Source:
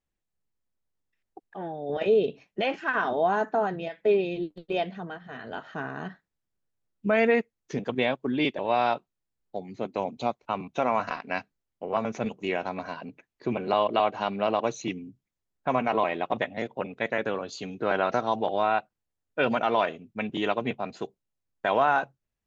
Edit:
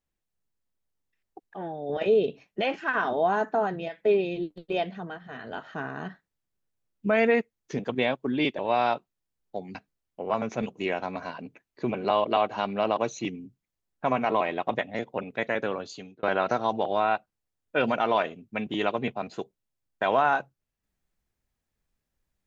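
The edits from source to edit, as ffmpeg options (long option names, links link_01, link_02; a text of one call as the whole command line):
ffmpeg -i in.wav -filter_complex "[0:a]asplit=3[link_01][link_02][link_03];[link_01]atrim=end=9.752[link_04];[link_02]atrim=start=11.378:end=17.86,asetpts=PTS-STARTPTS,afade=type=out:start_time=6.052:duration=0.43[link_05];[link_03]atrim=start=17.86,asetpts=PTS-STARTPTS,afade=type=in:duration=0.004:curve=hsin[link_06];[link_05][link_06]concat=n=2:v=0:a=1[link_07];[link_04][link_07]acrossfade=duration=0.004:curve1=hsin:curve2=hsin" out.wav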